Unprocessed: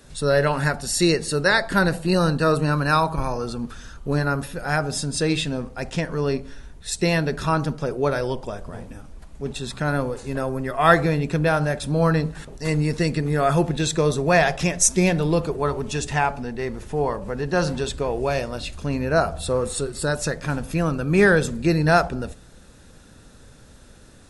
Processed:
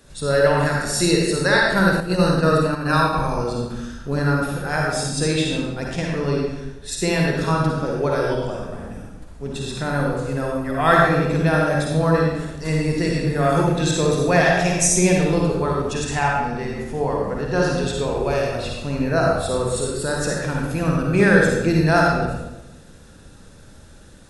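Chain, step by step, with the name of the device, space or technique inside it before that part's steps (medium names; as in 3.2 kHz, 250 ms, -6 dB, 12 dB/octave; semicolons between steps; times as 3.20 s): bathroom (reverberation RT60 1.0 s, pre-delay 46 ms, DRR -2 dB); 2.00–3.13 s: gate -16 dBFS, range -7 dB; trim -2 dB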